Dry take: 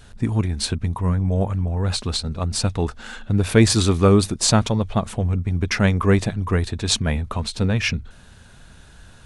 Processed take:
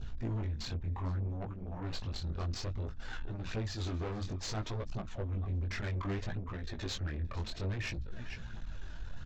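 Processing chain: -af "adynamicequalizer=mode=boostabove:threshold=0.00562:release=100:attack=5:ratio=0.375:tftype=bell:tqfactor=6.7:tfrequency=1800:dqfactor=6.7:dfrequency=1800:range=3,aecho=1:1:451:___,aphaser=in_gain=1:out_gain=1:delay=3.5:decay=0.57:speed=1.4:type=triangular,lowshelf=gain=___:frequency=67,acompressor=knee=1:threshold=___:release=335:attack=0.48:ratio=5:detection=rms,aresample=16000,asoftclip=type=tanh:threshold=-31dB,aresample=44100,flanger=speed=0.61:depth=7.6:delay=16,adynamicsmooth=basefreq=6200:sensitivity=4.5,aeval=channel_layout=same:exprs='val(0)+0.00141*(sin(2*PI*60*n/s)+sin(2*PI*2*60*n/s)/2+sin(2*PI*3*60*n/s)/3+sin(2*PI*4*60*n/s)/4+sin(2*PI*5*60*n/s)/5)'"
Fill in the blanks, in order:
0.0841, 9.5, -21dB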